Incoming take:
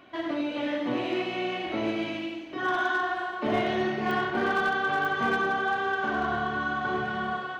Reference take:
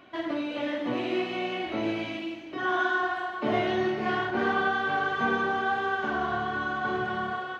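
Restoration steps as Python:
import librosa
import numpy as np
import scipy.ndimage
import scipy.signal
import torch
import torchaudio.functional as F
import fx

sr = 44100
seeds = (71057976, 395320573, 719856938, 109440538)

y = fx.fix_declip(x, sr, threshold_db=-19.0)
y = fx.fix_declick_ar(y, sr, threshold=10.0)
y = fx.fix_echo_inverse(y, sr, delay_ms=96, level_db=-7.5)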